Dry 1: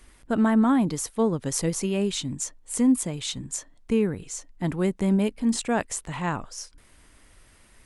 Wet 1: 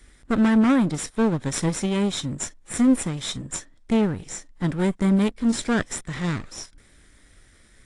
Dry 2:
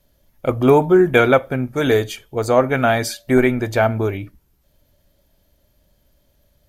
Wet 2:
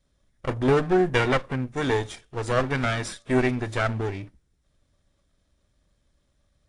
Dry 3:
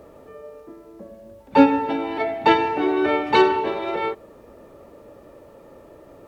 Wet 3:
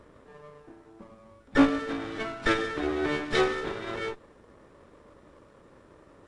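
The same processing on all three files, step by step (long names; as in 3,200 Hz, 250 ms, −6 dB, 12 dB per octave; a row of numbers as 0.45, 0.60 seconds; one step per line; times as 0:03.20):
lower of the sound and its delayed copy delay 0.55 ms
AAC 48 kbit/s 22,050 Hz
normalise the peak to −9 dBFS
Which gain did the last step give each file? +2.5, −6.5, −6.5 decibels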